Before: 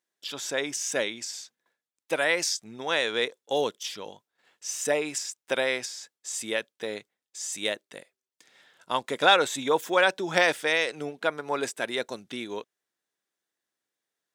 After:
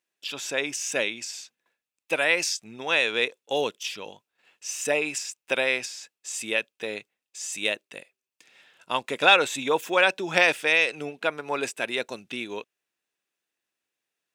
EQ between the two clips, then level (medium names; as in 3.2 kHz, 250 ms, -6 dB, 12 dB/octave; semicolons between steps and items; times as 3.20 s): peaking EQ 2.6 kHz +11 dB 0.28 oct; 0.0 dB